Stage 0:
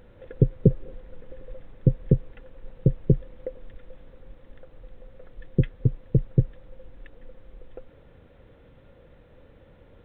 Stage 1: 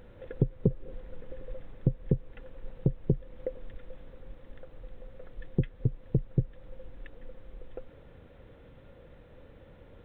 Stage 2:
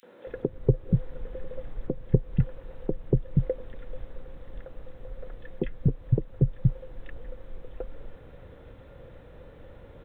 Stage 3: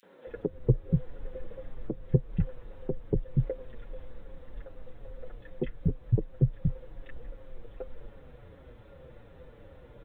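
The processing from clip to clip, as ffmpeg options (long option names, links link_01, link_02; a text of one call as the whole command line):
ffmpeg -i in.wav -af "acompressor=threshold=-27dB:ratio=2" out.wav
ffmpeg -i in.wav -filter_complex "[0:a]acrossover=split=220|2700[link_01][link_02][link_03];[link_02]adelay=30[link_04];[link_01]adelay=270[link_05];[link_05][link_04][link_03]amix=inputs=3:normalize=0,volume=5.5dB" out.wav
ffmpeg -i in.wav -filter_complex "[0:a]asplit=2[link_01][link_02];[link_02]adelay=6.6,afreqshift=-2.6[link_03];[link_01][link_03]amix=inputs=2:normalize=1" out.wav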